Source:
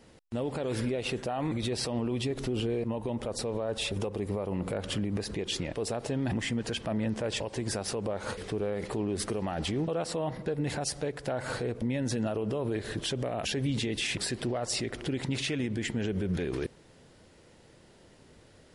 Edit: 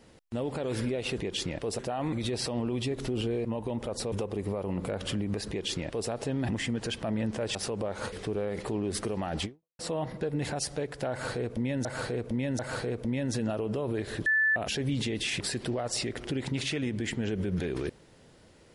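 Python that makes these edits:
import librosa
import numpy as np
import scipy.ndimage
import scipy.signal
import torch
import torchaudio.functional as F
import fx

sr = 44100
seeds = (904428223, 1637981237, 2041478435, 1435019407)

y = fx.edit(x, sr, fx.cut(start_s=3.51, length_s=0.44),
    fx.duplicate(start_s=5.32, length_s=0.61, to_s=1.18),
    fx.cut(start_s=7.38, length_s=0.42),
    fx.fade_out_span(start_s=9.7, length_s=0.34, curve='exp'),
    fx.repeat(start_s=11.36, length_s=0.74, count=3),
    fx.bleep(start_s=13.03, length_s=0.3, hz=1750.0, db=-21.5), tone=tone)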